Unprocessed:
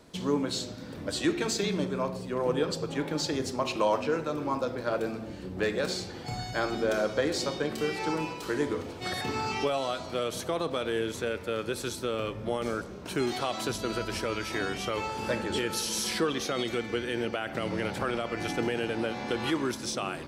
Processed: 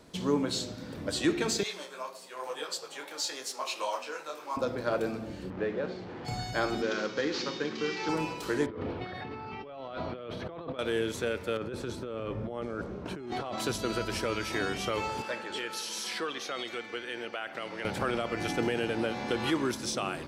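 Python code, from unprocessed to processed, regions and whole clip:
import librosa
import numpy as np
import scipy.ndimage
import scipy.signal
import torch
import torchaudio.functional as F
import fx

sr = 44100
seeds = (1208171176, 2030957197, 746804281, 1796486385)

y = fx.chain(x, sr, fx.highpass(hz=720.0, slope=12),
    fx.high_shelf(hz=5200.0, db=9.0),
    fx.detune_double(cents=35), at=(1.63, 4.57))
y = fx.chain(y, sr, fx.delta_mod(bps=64000, step_db=-31.0),
    fx.highpass(hz=170.0, slope=6),
    fx.spacing_loss(db_at_10k=44), at=(5.5, 6.25))
y = fx.chain(y, sr, fx.cvsd(bps=32000),
    fx.highpass(hz=190.0, slope=12),
    fx.peak_eq(hz=650.0, db=-14.0, octaves=0.41), at=(6.82, 8.09))
y = fx.chain(y, sr, fx.over_compress(threshold_db=-38.0, ratio=-1.0),
    fx.air_absorb(metres=350.0),
    fx.notch(hz=6900.0, q=12.0), at=(8.66, 10.79))
y = fx.chain(y, sr, fx.lowpass(hz=1300.0, slope=6),
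    fx.over_compress(threshold_db=-36.0, ratio=-1.0), at=(11.57, 13.58))
y = fx.chain(y, sr, fx.highpass(hz=1000.0, slope=6),
    fx.high_shelf(hz=5600.0, db=-10.5), at=(15.22, 17.85))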